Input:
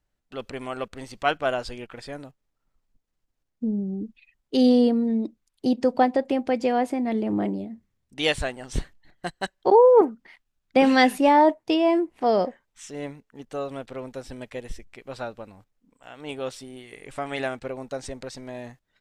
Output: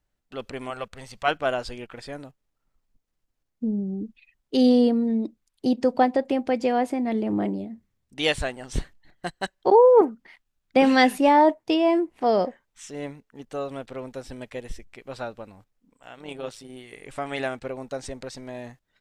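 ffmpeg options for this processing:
-filter_complex "[0:a]asettb=1/sr,asplit=3[s0][s1][s2];[s0]atrim=end=0.704[s3];[s1]atrim=start=0.7:end=1.28,asetpts=PTS-STARTPTS,afade=t=in:d=0.004:c=qsin,afade=t=out:st=0.576:d=0.004:c=qsin,equalizer=f=310:w=2.5:g=-15[s4];[s2]atrim=start=1.276[s5];[s3][s4]acrossfade=d=0.004:c1=hsin:c2=qsin[s6];[s6][s5]acrossfade=d=0.004:c1=qsin:c2=hsin,asplit=3[s7][s8][s9];[s7]afade=t=out:st=16.15:d=0.02[s10];[s8]tremolo=f=110:d=0.621,afade=t=in:st=16.15:d=0.02,afade=t=out:st=16.68:d=0.02[s11];[s9]afade=t=in:st=16.68:d=0.02[s12];[s10][s11][s12]amix=inputs=3:normalize=0"

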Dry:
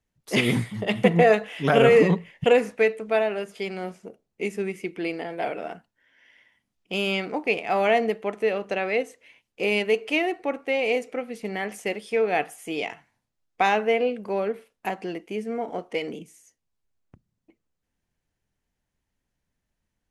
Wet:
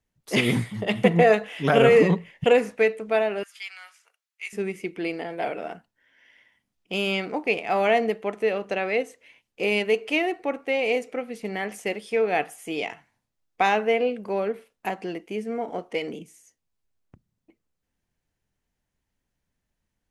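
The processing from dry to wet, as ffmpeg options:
-filter_complex "[0:a]asettb=1/sr,asplit=3[s0][s1][s2];[s0]atrim=end=3.434[s3];[s1]atrim=start=3.43:end=4.53,asetpts=PTS-STARTPTS,afade=t=in:d=0.004:c=qsin,afade=t=out:st=1.096:d=0.004:c=qsin,highpass=f=1300:w=0.5412,highpass=f=1300:w=1.3066[s4];[s2]atrim=start=4.526[s5];[s3][s4]acrossfade=d=0.004:c1=hsin:c2=qsin[s6];[s6][s5]acrossfade=d=0.004:c1=qsin:c2=hsin"

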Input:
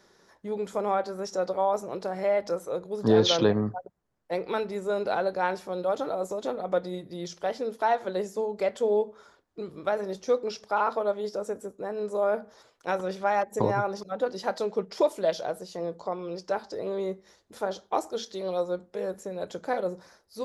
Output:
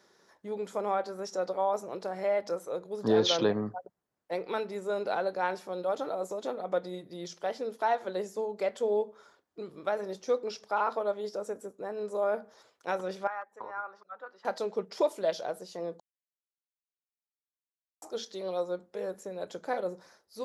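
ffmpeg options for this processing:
-filter_complex "[0:a]asettb=1/sr,asplit=3[s0][s1][s2];[s0]atrim=end=13.274[s3];[s1]atrim=start=13.27:end=14.45,asetpts=PTS-STARTPTS,afade=t=in:d=0.004:c=qsin,afade=t=out:st=1.176:d=0.004:c=qsin,bandpass=f=1300:t=q:w=3.1[s4];[s2]atrim=start=14.446[s5];[s3][s4]acrossfade=d=0.004:c1=hsin:c2=qsin[s6];[s6][s5]acrossfade=d=0.004:c1=qsin:c2=hsin,asplit=3[s7][s8][s9];[s7]atrim=end=16,asetpts=PTS-STARTPTS,afade=t=out:st=15.996:d=0.004:c=hsin[s10];[s8]atrim=start=16:end=18.02,asetpts=PTS-STARTPTS,volume=0[s11];[s9]atrim=start=18.02,asetpts=PTS-STARTPTS,afade=t=in:d=0.004:c=hsin[s12];[s10][s11][s12]concat=n=3:v=0:a=1,highpass=f=200:p=1,volume=0.708"

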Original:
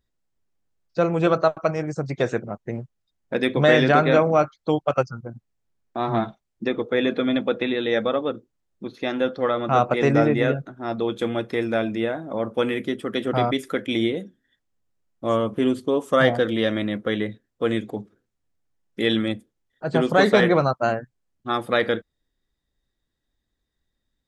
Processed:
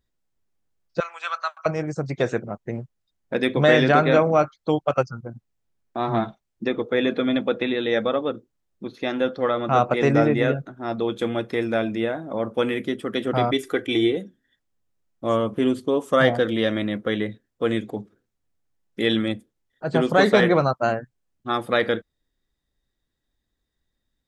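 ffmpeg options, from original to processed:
-filter_complex "[0:a]asettb=1/sr,asplit=3[s0][s1][s2];[s0]atrim=end=1.004[s3];[s1]atrim=start=1:end=1.66,asetpts=PTS-STARTPTS,afade=t=in:d=0.004:c=qsin,afade=t=out:st=0.656:d=0.004:c=qsin,highpass=f=1100:w=0.5412,highpass=f=1100:w=1.3066[s4];[s2]atrim=start=1.656[s5];[s3][s4]acrossfade=d=0.004:c1=hsin:c2=qsin[s6];[s6][s5]acrossfade=d=0.004:c1=qsin:c2=hsin,asettb=1/sr,asplit=3[s7][s8][s9];[s7]atrim=end=13.534[s10];[s8]atrim=start=13.53:end=14.17,asetpts=PTS-STARTPTS,afade=t=in:d=0.004:c=qsin,afade=t=out:st=0.636:d=0.004:c=qsin,aecho=1:1:2.6:0.65,atrim=end_sample=28224[s11];[s9]atrim=start=14.166[s12];[s10][s11]acrossfade=d=0.004:c1=hsin:c2=qsin[s13];[s13][s12]acrossfade=d=0.004:c1=qsin:c2=hsin"

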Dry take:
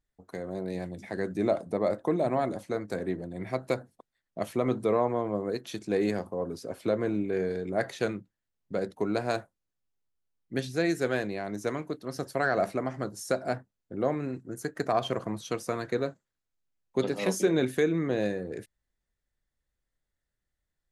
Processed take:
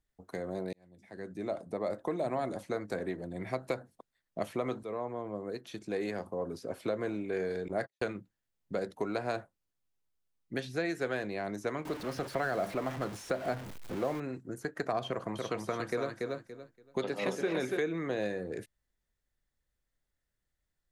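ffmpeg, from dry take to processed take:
-filter_complex "[0:a]asettb=1/sr,asplit=3[s0][s1][s2];[s0]atrim=end=7.684[s3];[s1]atrim=start=7.68:end=8.15,asetpts=PTS-STARTPTS,afade=t=in:d=0.004:c=qsin,afade=t=out:st=0.466:d=0.004:c=qsin,agate=range=0.00355:threshold=0.0178:ratio=16:release=100:detection=peak[s4];[s2]atrim=start=8.146[s5];[s3][s4]acrossfade=d=0.004:c1=hsin:c2=qsin[s6];[s6][s5]acrossfade=d=0.004:c1=qsin:c2=hsin,asettb=1/sr,asplit=3[s7][s8][s9];[s7]atrim=end=11.854[s10];[s8]atrim=start=11.85:end=14.2,asetpts=PTS-STARTPTS,afade=t=in:d=0.004:c=qsin,afade=t=out:st=2.346:d=0.004:c=qsin,aeval=exprs='val(0)+0.5*0.0168*sgn(val(0))':c=same[s11];[s9]atrim=start=14.196[s12];[s10][s11]acrossfade=d=0.004:c1=hsin:c2=qsin[s13];[s13][s12]acrossfade=d=0.004:c1=qsin:c2=hsin,asettb=1/sr,asplit=3[s14][s15][s16];[s14]atrim=end=15.074[s17];[s15]atrim=start=15.07:end=17.79,asetpts=PTS-STARTPTS,afade=t=in:d=0.004:c=qsin,afade=t=out:st=2.716:d=0.004:c=qsin,aecho=1:1:285|570|855:0.562|0.118|0.0248,atrim=end_sample=119952[s18];[s16]atrim=start=17.786[s19];[s17][s18]acrossfade=d=0.004:c1=hsin:c2=qsin[s20];[s20][s19]acrossfade=d=0.004:c1=qsin:c2=hsin,asplit=3[s21][s22][s23];[s21]atrim=end=0.73,asetpts=PTS-STARTPTS,afade=t=out:st=0.726:d=0.004:c=hsin[s24];[s22]atrim=start=0.73:end=4.83,asetpts=PTS-STARTPTS,afade=t=in:d=1.77,afade=t=out:st=4.096:d=0.004:c=hsin:silence=0.237137[s25];[s23]atrim=start=4.83,asetpts=PTS-STARTPTS,afade=t=in:d=2.06:silence=0.237137[s26];[s24][s25][s26]concat=n=3:v=0:a=1,acrossover=split=480|3700[s27][s28][s29];[s27]acompressor=threshold=0.0141:ratio=4[s30];[s28]acompressor=threshold=0.0251:ratio=4[s31];[s29]acompressor=threshold=0.00178:ratio=4[s32];[s30][s31][s32]amix=inputs=3:normalize=0"

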